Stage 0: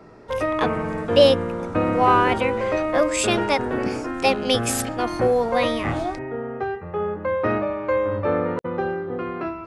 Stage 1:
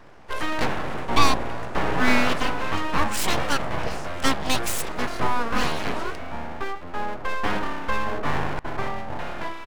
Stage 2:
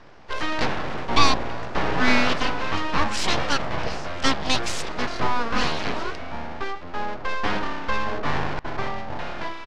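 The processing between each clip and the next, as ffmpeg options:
-filter_complex "[0:a]aeval=exprs='abs(val(0))':c=same,asplit=2[a][b];[b]adelay=291.5,volume=-26dB,highshelf=f=4k:g=-6.56[c];[a][c]amix=inputs=2:normalize=0"
-af "lowpass=f=5.2k:t=q:w=1.5"

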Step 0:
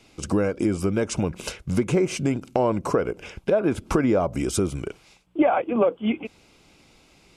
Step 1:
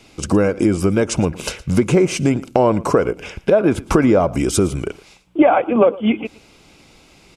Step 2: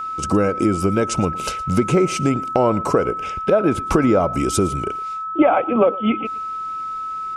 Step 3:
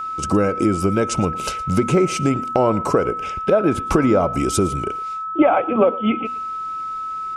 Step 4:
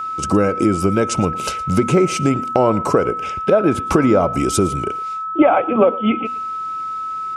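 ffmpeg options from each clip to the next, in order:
-af "aecho=1:1:114:0.0944,volume=7dB"
-af "aeval=exprs='val(0)+0.0794*sin(2*PI*1300*n/s)':c=same,volume=-2.5dB"
-af "bandreject=f=239.7:t=h:w=4,bandreject=f=479.4:t=h:w=4,bandreject=f=719.1:t=h:w=4,bandreject=f=958.8:t=h:w=4,bandreject=f=1.1985k:t=h:w=4,bandreject=f=1.4382k:t=h:w=4,bandreject=f=1.6779k:t=h:w=4,bandreject=f=1.9176k:t=h:w=4,bandreject=f=2.1573k:t=h:w=4,bandreject=f=2.397k:t=h:w=4,bandreject=f=2.6367k:t=h:w=4,bandreject=f=2.8764k:t=h:w=4,bandreject=f=3.1161k:t=h:w=4,bandreject=f=3.3558k:t=h:w=4,bandreject=f=3.5955k:t=h:w=4"
-af "highpass=63,volume=2dB"

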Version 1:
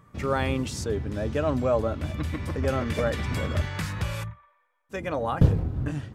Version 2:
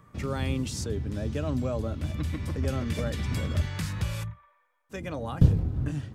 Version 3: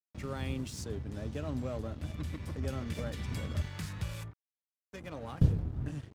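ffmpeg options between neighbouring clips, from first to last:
-filter_complex "[0:a]acrossover=split=300|3000[a][b][c];[b]acompressor=threshold=-52dB:ratio=1.5[d];[a][d][c]amix=inputs=3:normalize=0"
-af "aeval=exprs='sgn(val(0))*max(abs(val(0))-0.00668,0)':c=same,volume=-6dB"

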